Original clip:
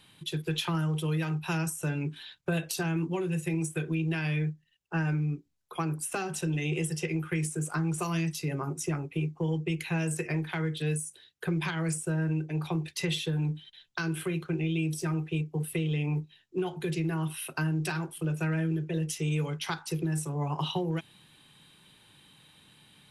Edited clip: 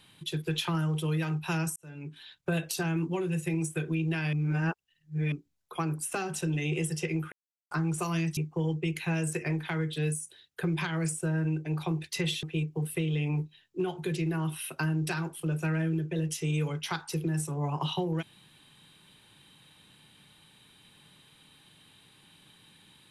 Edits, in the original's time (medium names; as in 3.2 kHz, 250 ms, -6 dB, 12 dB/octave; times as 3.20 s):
1.76–2.52 s: fade in
4.33–5.32 s: reverse
7.32–7.71 s: mute
8.37–9.21 s: delete
13.27–15.21 s: delete